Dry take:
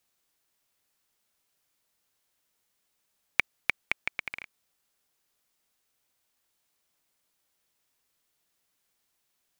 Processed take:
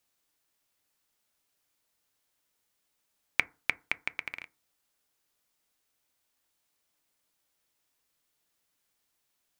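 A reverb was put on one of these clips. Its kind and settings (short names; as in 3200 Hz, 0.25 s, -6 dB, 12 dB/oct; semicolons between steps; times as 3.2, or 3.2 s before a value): FDN reverb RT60 0.33 s, low-frequency decay 1.1×, high-frequency decay 0.35×, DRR 14.5 dB; gain -1.5 dB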